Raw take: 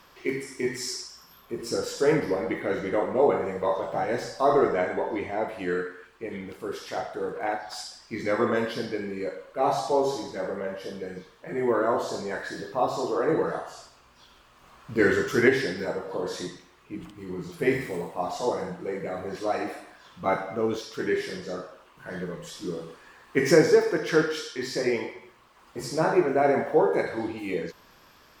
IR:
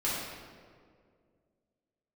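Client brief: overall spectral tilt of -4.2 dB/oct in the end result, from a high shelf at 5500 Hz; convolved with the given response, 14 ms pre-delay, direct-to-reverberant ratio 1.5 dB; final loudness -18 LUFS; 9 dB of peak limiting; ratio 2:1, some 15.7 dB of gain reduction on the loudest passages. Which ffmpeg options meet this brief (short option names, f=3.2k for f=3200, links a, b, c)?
-filter_complex "[0:a]highshelf=f=5.5k:g=6,acompressor=threshold=-43dB:ratio=2,alimiter=level_in=5dB:limit=-24dB:level=0:latency=1,volume=-5dB,asplit=2[a][b];[1:a]atrim=start_sample=2205,adelay=14[c];[b][c]afir=irnorm=-1:irlink=0,volume=-9.5dB[d];[a][d]amix=inputs=2:normalize=0,volume=20dB"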